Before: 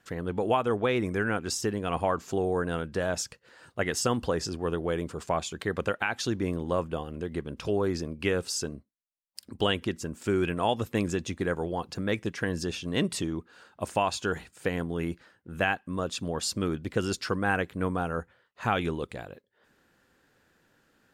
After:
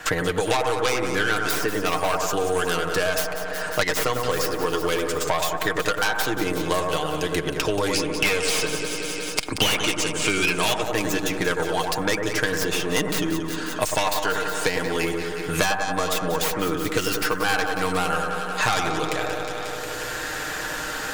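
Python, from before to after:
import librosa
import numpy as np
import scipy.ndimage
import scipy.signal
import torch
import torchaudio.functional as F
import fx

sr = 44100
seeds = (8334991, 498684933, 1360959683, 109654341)

p1 = fx.tracing_dist(x, sr, depth_ms=0.29)
p2 = fx.peak_eq(p1, sr, hz=170.0, db=-13.5, octaves=2.4)
p3 = p2 + 0.6 * np.pad(p2, (int(6.5 * sr / 1000.0), 0))[:len(p2)]
p4 = fx.echo_feedback(p3, sr, ms=180, feedback_pct=54, wet_db=-14.0)
p5 = fx.spec_box(p4, sr, start_s=7.93, length_s=2.89, low_hz=2100.0, high_hz=11000.0, gain_db=12)
p6 = fx.peak_eq(p5, sr, hz=6600.0, db=3.5, octaves=0.77)
p7 = fx.fold_sine(p6, sr, drive_db=18, ceiling_db=-1.5)
p8 = p6 + (p7 * librosa.db_to_amplitude(-8.5))
p9 = fx.echo_bbd(p8, sr, ms=98, stages=1024, feedback_pct=52, wet_db=-4.5)
p10 = fx.band_squash(p9, sr, depth_pct=100)
y = p10 * librosa.db_to_amplitude(-7.5)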